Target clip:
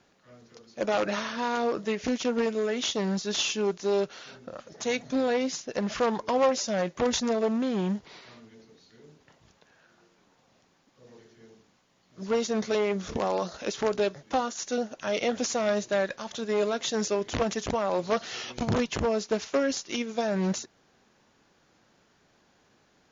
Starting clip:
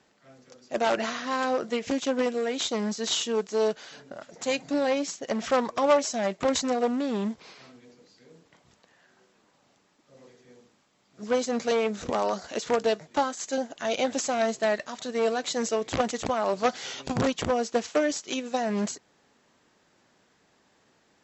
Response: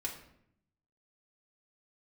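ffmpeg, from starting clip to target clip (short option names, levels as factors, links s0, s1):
-filter_complex "[0:a]lowshelf=f=68:g=8,asplit=2[s0][s1];[s1]alimiter=limit=0.112:level=0:latency=1,volume=0.794[s2];[s0][s2]amix=inputs=2:normalize=0,asetrate=40517,aresample=44100,volume=0.562"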